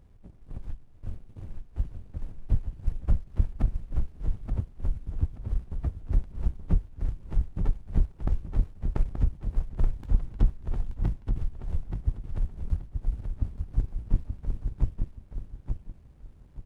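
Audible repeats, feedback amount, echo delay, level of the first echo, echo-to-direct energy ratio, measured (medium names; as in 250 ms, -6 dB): 3, 26%, 878 ms, -6.0 dB, -5.5 dB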